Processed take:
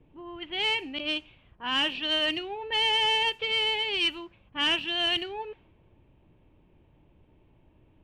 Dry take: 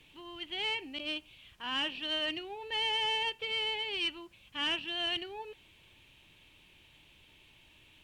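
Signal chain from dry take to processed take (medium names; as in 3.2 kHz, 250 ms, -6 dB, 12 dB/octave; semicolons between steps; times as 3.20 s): level-controlled noise filter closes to 550 Hz, open at -31 dBFS; trim +7 dB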